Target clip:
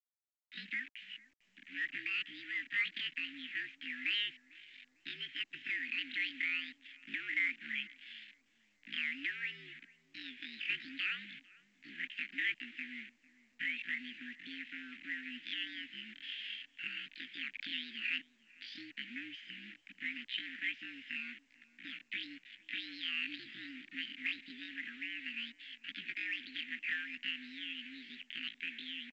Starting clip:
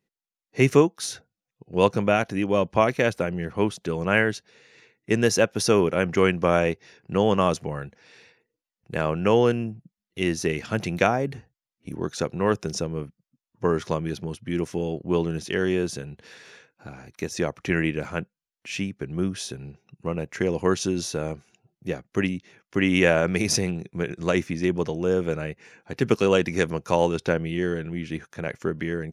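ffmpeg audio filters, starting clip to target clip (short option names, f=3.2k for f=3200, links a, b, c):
-filter_complex "[0:a]adynamicequalizer=threshold=0.0126:dfrequency=800:dqfactor=3.3:tfrequency=800:tqfactor=3.3:attack=5:release=100:ratio=0.375:range=2.5:mode=cutabove:tftype=bell,dynaudnorm=f=460:g=21:m=13dB,alimiter=limit=-11dB:level=0:latency=1:release=95,acompressor=threshold=-37dB:ratio=2,asetrate=85689,aresample=44100,atempo=0.514651,asoftclip=type=hard:threshold=-25.5dB,acrusher=bits=7:mix=0:aa=0.000001,asuperstop=centerf=780:order=12:qfactor=0.51,asplit=2[a][b];[b]adelay=450,lowpass=f=1.3k:p=1,volume=-19.5dB,asplit=2[c][d];[d]adelay=450,lowpass=f=1.3k:p=1,volume=0.39,asplit=2[e][f];[f]adelay=450,lowpass=f=1.3k:p=1,volume=0.39[g];[a][c][e][g]amix=inputs=4:normalize=0,highpass=f=590:t=q:w=0.5412,highpass=f=590:t=q:w=1.307,lowpass=f=2.9k:t=q:w=0.5176,lowpass=f=2.9k:t=q:w=0.7071,lowpass=f=2.9k:t=q:w=1.932,afreqshift=-66,volume=9dB" -ar 16000 -c:a pcm_mulaw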